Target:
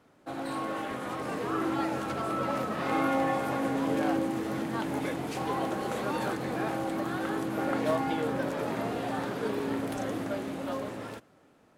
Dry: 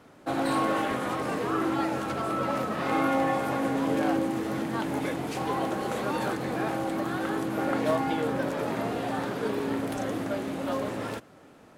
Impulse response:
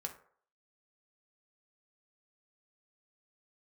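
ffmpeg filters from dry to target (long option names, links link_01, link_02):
-af "dynaudnorm=framelen=140:gausssize=17:maxgain=6.5dB,volume=-8.5dB"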